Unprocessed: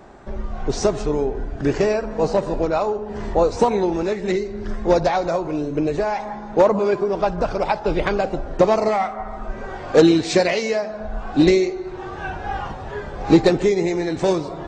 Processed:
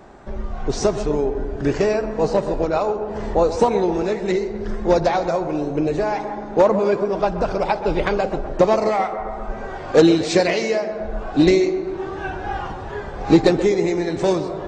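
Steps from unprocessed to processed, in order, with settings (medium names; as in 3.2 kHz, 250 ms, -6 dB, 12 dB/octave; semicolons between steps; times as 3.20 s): tape echo 129 ms, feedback 82%, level -11.5 dB, low-pass 1.7 kHz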